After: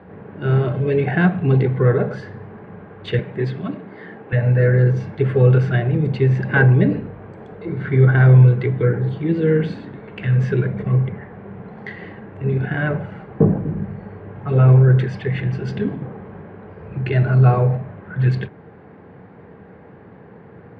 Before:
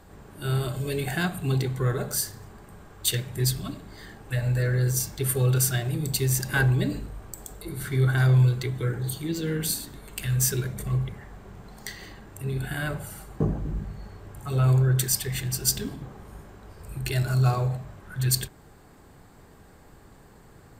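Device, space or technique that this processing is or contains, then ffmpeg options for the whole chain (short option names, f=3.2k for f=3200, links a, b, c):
bass cabinet: -filter_complex "[0:a]highpass=f=87:w=0.5412,highpass=f=87:w=1.3066,equalizer=f=190:t=q:w=4:g=6,equalizer=f=470:t=q:w=4:g=7,equalizer=f=1.2k:t=q:w=4:g=-4,lowpass=f=2.3k:w=0.5412,lowpass=f=2.3k:w=1.3066,asettb=1/sr,asplit=3[a][b][c];[a]atrim=end=3.194[d];[b]atrim=start=3.19:end=4.33,asetpts=PTS-STARTPTS,afade=t=in:d=0.004:c=qsin,afade=t=out:st=1.136:d=0.004:c=qsin,highpass=190[e];[c]atrim=start=4.326[f];[d][e]acrossfade=d=0.004:c1=hsin:c2=qsin[g];[g][f]acrossfade=d=0.004:c1=qsin:c2=hsin,volume=8.5dB"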